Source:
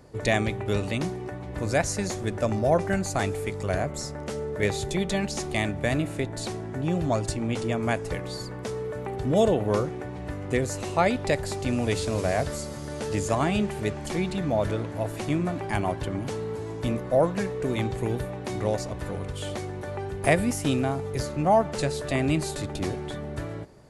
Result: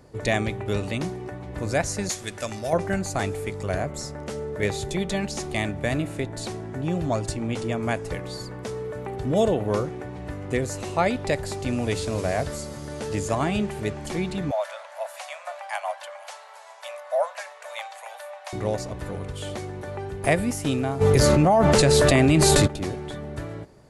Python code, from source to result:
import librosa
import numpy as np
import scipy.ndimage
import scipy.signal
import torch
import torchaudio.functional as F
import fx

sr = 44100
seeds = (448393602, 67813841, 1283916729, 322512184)

y = fx.tilt_shelf(x, sr, db=-9.0, hz=1400.0, at=(2.09, 2.73))
y = fx.steep_highpass(y, sr, hz=560.0, slope=96, at=(14.51, 18.53))
y = fx.env_flatten(y, sr, amount_pct=100, at=(21.0, 22.66), fade=0.02)